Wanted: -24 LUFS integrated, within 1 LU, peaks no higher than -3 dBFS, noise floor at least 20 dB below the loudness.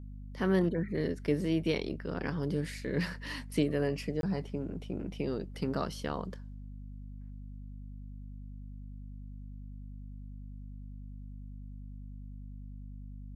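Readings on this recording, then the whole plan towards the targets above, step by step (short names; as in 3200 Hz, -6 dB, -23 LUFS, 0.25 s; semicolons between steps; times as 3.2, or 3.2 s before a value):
dropouts 1; longest dropout 22 ms; hum 50 Hz; harmonics up to 250 Hz; hum level -42 dBFS; loudness -33.5 LUFS; peak -16.0 dBFS; loudness target -24.0 LUFS
-> interpolate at 4.21, 22 ms; de-hum 50 Hz, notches 5; gain +9.5 dB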